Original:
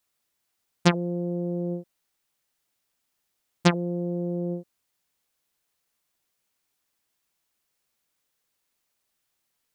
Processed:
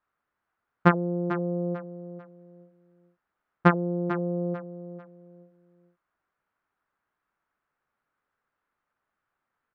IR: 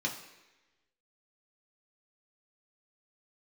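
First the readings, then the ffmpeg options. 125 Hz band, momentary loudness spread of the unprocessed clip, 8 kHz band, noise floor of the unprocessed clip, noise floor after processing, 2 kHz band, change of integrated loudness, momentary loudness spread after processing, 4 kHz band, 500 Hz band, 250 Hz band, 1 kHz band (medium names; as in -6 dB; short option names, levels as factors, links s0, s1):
0.0 dB, 9 LU, under -25 dB, -78 dBFS, -84 dBFS, +2.5 dB, +1.0 dB, 20 LU, -14.0 dB, +1.5 dB, 0.0 dB, +5.5 dB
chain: -af "lowpass=f=1400:t=q:w=2.6,aecho=1:1:445|890|1335:0.266|0.0745|0.0209"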